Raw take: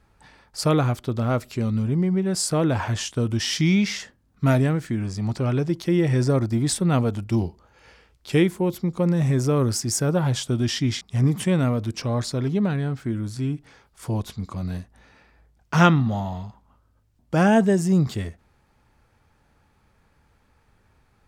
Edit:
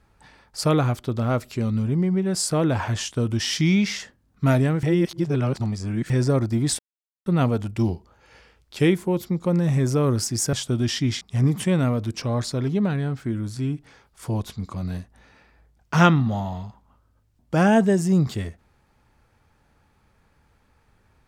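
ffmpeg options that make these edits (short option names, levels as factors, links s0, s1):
-filter_complex "[0:a]asplit=5[s0][s1][s2][s3][s4];[s0]atrim=end=4.832[s5];[s1]atrim=start=4.828:end=6.102,asetpts=PTS-STARTPTS,areverse[s6];[s2]atrim=start=6.098:end=6.79,asetpts=PTS-STARTPTS,afade=t=out:st=0.688:d=0.004:c=hsin,apad=pad_dur=0.47[s7];[s3]atrim=start=6.79:end=10.062,asetpts=PTS-STARTPTS,afade=t=in:d=0.004:c=hsin[s8];[s4]atrim=start=10.328[s9];[s5][s6]acrossfade=d=0.004:c1=hsin:c2=hsin[s10];[s7][s8]concat=n=2:v=0:a=1[s11];[s10][s11]acrossfade=d=0.004:c1=hsin:c2=hsin[s12];[s12][s9]acrossfade=d=0.004:c1=hsin:c2=hsin"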